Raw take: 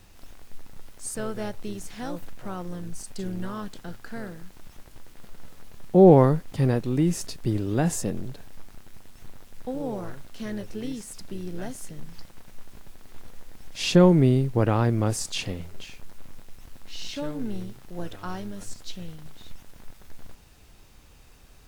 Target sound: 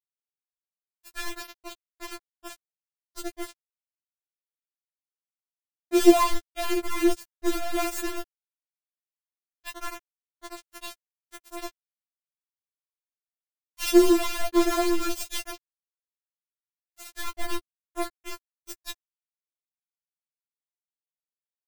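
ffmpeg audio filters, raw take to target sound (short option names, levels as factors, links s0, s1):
-af "acrusher=bits=3:mix=0:aa=0.000001,afftfilt=real='re*4*eq(mod(b,16),0)':imag='im*4*eq(mod(b,16),0)':win_size=2048:overlap=0.75"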